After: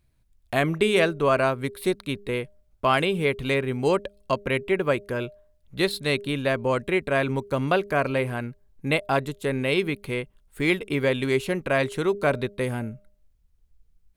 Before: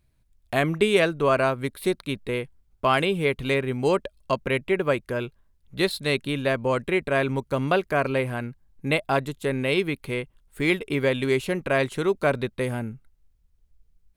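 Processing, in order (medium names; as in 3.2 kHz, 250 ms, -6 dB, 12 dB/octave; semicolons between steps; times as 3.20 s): de-hum 202.6 Hz, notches 3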